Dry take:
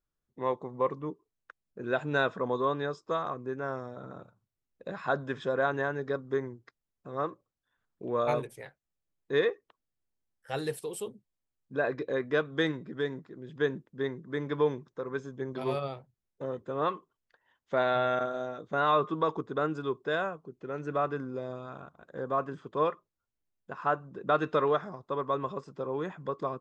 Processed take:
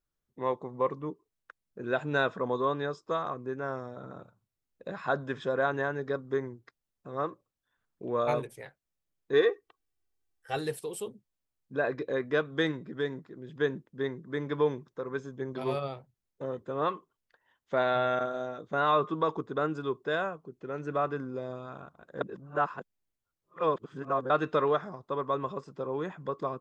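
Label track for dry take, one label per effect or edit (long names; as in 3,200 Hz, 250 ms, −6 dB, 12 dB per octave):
9.330000	10.570000	comb filter 2.6 ms
22.210000	24.300000	reverse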